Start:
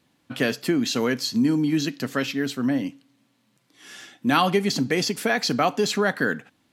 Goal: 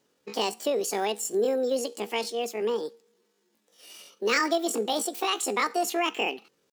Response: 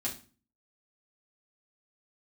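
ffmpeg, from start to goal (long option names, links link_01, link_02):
-af "asetrate=74167,aresample=44100,atempo=0.594604,volume=-4.5dB"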